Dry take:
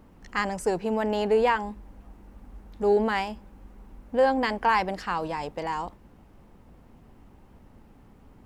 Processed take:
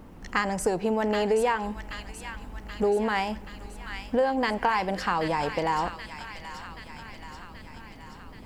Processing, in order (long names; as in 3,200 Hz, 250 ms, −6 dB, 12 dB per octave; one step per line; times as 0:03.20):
downward compressor 4 to 1, threshold −29 dBFS, peak gain reduction 11 dB
delay with a high-pass on its return 779 ms, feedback 62%, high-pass 1,600 Hz, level −6 dB
on a send at −18 dB: convolution reverb RT60 0.70 s, pre-delay 4 ms
on the sum: level +6.5 dB